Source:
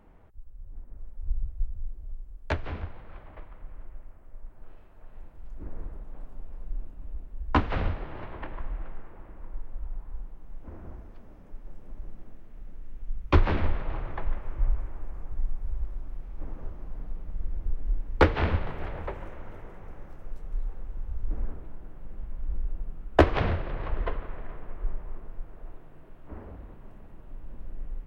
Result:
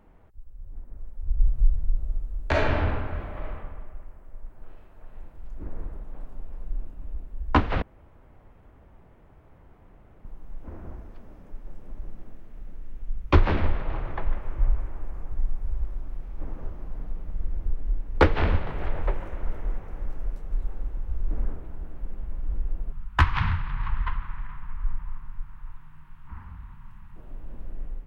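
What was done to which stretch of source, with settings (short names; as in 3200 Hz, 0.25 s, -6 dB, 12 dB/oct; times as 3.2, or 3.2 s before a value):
1.33–3.53 reverb throw, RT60 1.5 s, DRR -6 dB
7.82–10.25 room tone
17.55–18.02 echo throw 0.59 s, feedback 85%, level -1 dB
22.92–27.16 EQ curve 160 Hz 0 dB, 440 Hz -27 dB, 650 Hz -25 dB, 930 Hz +2 dB, 5200 Hz -2 dB
whole clip: AGC gain up to 3 dB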